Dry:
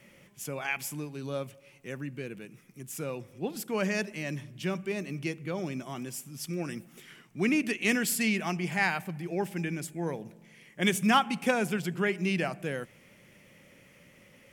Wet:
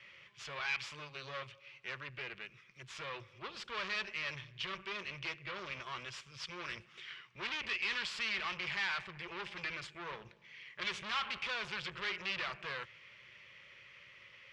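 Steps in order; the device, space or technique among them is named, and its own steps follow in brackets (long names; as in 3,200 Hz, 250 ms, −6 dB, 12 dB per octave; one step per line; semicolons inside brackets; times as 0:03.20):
scooped metal amplifier (tube saturation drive 38 dB, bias 0.75; loudspeaker in its box 77–4,100 Hz, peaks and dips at 84 Hz −7 dB, 170 Hz −8 dB, 240 Hz −4 dB, 360 Hz +9 dB, 740 Hz −9 dB, 1,100 Hz +5 dB; guitar amp tone stack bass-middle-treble 10-0-10)
level +12 dB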